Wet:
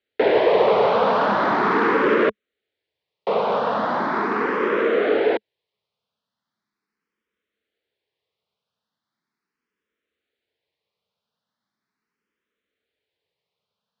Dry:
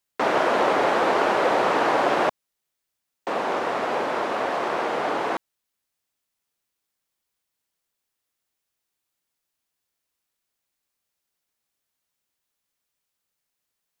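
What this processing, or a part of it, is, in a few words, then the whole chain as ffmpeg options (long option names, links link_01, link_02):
barber-pole phaser into a guitar amplifier: -filter_complex "[0:a]asplit=2[link_01][link_02];[link_02]afreqshift=0.39[link_03];[link_01][link_03]amix=inputs=2:normalize=1,asoftclip=type=tanh:threshold=-20dB,highpass=83,equalizer=frequency=210:width_type=q:width=4:gain=7,equalizer=frequency=440:width_type=q:width=4:gain=9,equalizer=frequency=770:width_type=q:width=4:gain=-4,equalizer=frequency=2700:width_type=q:width=4:gain=-3,lowpass=frequency=4000:width=0.5412,lowpass=frequency=4000:width=1.3066,volume=7dB"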